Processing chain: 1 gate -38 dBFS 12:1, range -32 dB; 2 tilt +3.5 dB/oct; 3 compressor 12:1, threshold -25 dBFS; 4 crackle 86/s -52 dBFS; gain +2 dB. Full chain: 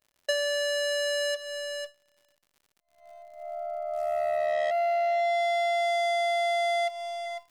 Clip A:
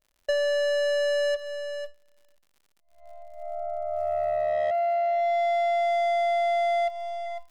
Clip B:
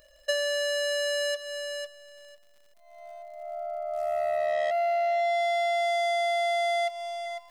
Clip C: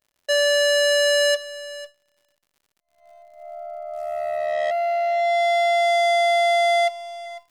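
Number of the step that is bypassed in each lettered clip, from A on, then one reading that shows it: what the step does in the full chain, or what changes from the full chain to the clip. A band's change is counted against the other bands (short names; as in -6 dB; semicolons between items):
2, 4 kHz band -6.5 dB; 1, momentary loudness spread change +2 LU; 3, mean gain reduction 4.5 dB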